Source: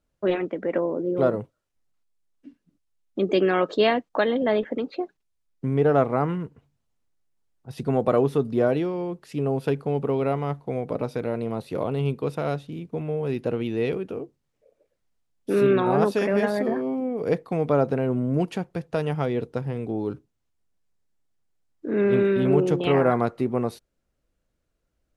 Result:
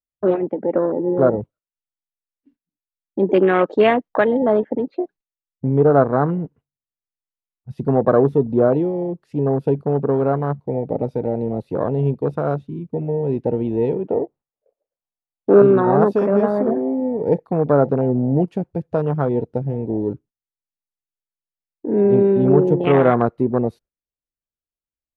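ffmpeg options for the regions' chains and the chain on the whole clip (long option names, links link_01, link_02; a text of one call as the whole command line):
ffmpeg -i in.wav -filter_complex "[0:a]asettb=1/sr,asplit=3[link_01][link_02][link_03];[link_01]atrim=end=14.064[link_04];[link_02]atrim=start=14.06:end=15.62,asetpts=PTS-STARTPTS,afade=type=in:duration=0.004:curve=qsin,afade=type=out:start_time=1.556:duration=0.004:curve=qsin,lowpass=3800,equalizer=frequency=780:width_type=o:width=1.6:gain=14[link_05];[link_03]atrim=start=15.616[link_06];[link_04][link_05]acrossfade=duration=0.004:curve1=hsin:curve2=qsin[link_07];[link_07][link_06]acrossfade=duration=0.004:curve1=qsin:curve2=hsin,agate=range=-14dB:threshold=-49dB:ratio=16:detection=peak,afwtdn=0.0398,highshelf=frequency=4900:gain=-7,volume=6dB" out.wav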